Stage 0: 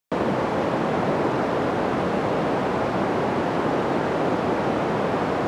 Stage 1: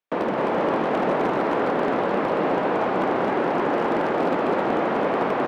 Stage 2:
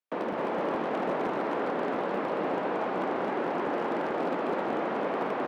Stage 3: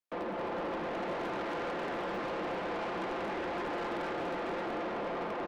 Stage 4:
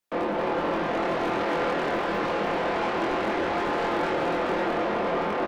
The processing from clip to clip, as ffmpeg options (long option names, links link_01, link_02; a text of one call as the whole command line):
ffmpeg -i in.wav -filter_complex "[0:a]acrossover=split=200 3400:gain=0.178 1 0.178[link_01][link_02][link_03];[link_01][link_02][link_03]amix=inputs=3:normalize=0,aeval=exprs='0.178*(abs(mod(val(0)/0.178+3,4)-2)-1)':channel_layout=same,asplit=2[link_04][link_05];[link_05]aecho=0:1:261:0.708[link_06];[link_04][link_06]amix=inputs=2:normalize=0" out.wav
ffmpeg -i in.wav -filter_complex "[0:a]highpass=frequency=81:width=0.5412,highpass=frequency=81:width=1.3066,acrossover=split=120[link_01][link_02];[link_01]acrusher=bits=4:dc=4:mix=0:aa=0.000001[link_03];[link_03][link_02]amix=inputs=2:normalize=0,volume=-7.5dB" out.wav
ffmpeg -i in.wav -filter_complex "[0:a]aecho=1:1:5.8:0.41,acrossover=split=1600[link_01][link_02];[link_02]dynaudnorm=framelen=230:gausssize=9:maxgain=5dB[link_03];[link_01][link_03]amix=inputs=2:normalize=0,asoftclip=type=tanh:threshold=-29.5dB,volume=-2.5dB" out.wav
ffmpeg -i in.wav -filter_complex "[0:a]asplit=2[link_01][link_02];[link_02]adelay=24,volume=-2dB[link_03];[link_01][link_03]amix=inputs=2:normalize=0,volume=7.5dB" out.wav